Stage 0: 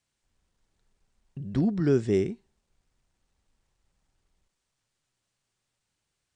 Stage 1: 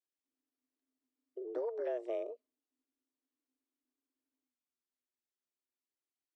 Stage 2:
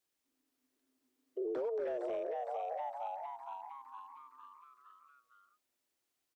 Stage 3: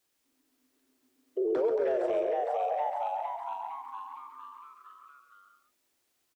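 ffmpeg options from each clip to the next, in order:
-filter_complex "[0:a]afwtdn=0.00891,afreqshift=240,acrossover=split=610|1400[a][b][c];[a]acompressor=threshold=-35dB:ratio=4[d];[b]acompressor=threshold=-36dB:ratio=4[e];[c]acompressor=threshold=-53dB:ratio=4[f];[d][e][f]amix=inputs=3:normalize=0,volume=-5.5dB"
-filter_complex "[0:a]asplit=8[a][b][c][d][e][f][g][h];[b]adelay=460,afreqshift=110,volume=-8dB[i];[c]adelay=920,afreqshift=220,volume=-13.2dB[j];[d]adelay=1380,afreqshift=330,volume=-18.4dB[k];[e]adelay=1840,afreqshift=440,volume=-23.6dB[l];[f]adelay=2300,afreqshift=550,volume=-28.8dB[m];[g]adelay=2760,afreqshift=660,volume=-34dB[n];[h]adelay=3220,afreqshift=770,volume=-39.2dB[o];[a][i][j][k][l][m][n][o]amix=inputs=8:normalize=0,acrossover=split=600|750[p][q][r];[p]volume=35.5dB,asoftclip=hard,volume=-35.5dB[s];[s][q][r]amix=inputs=3:normalize=0,alimiter=level_in=16.5dB:limit=-24dB:level=0:latency=1:release=56,volume=-16.5dB,volume=9.5dB"
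-af "aecho=1:1:135:0.447,volume=8dB"

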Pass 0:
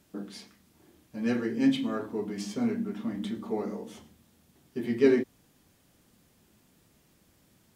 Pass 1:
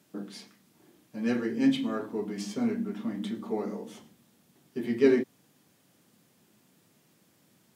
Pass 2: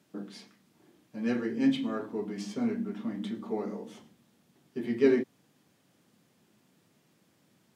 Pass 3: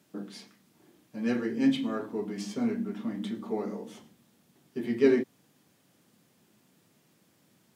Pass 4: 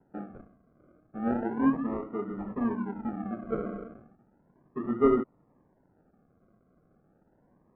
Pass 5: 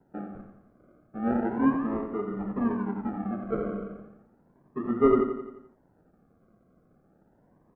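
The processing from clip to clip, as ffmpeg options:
-af "highpass=f=120:w=0.5412,highpass=f=120:w=1.3066"
-af "highshelf=f=8.2k:g=-8.5,volume=-1.5dB"
-af "crystalizer=i=0.5:c=0,volume=1dB"
-af "acrusher=samples=38:mix=1:aa=0.000001:lfo=1:lforange=22.8:lforate=0.34,lowpass=f=1.4k:w=0.5412,lowpass=f=1.4k:w=1.3066"
-af "aecho=1:1:87|174|261|348|435|522:0.398|0.211|0.112|0.0593|0.0314|0.0166,volume=1.5dB"

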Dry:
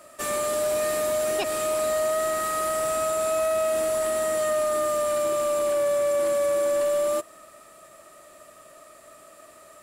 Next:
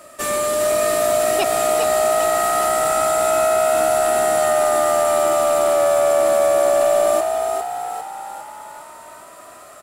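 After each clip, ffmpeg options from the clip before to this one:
-filter_complex "[0:a]asplit=8[a][b][c][d][e][f][g][h];[b]adelay=403,afreqshift=66,volume=-5dB[i];[c]adelay=806,afreqshift=132,volume=-10.5dB[j];[d]adelay=1209,afreqshift=198,volume=-16dB[k];[e]adelay=1612,afreqshift=264,volume=-21.5dB[l];[f]adelay=2015,afreqshift=330,volume=-27.1dB[m];[g]adelay=2418,afreqshift=396,volume=-32.6dB[n];[h]adelay=2821,afreqshift=462,volume=-38.1dB[o];[a][i][j][k][l][m][n][o]amix=inputs=8:normalize=0,volume=6dB"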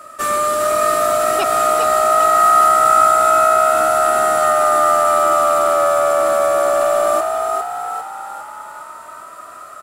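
-af "equalizer=f=1.3k:w=3.3:g=13,volume=-1dB"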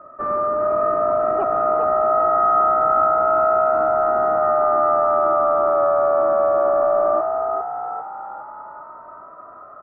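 -af "lowpass=f=1.2k:w=0.5412,lowpass=f=1.2k:w=1.3066,volume=-1.5dB"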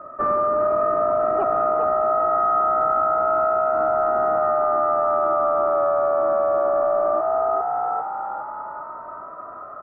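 -af "acompressor=threshold=-21dB:ratio=6,volume=4dB"

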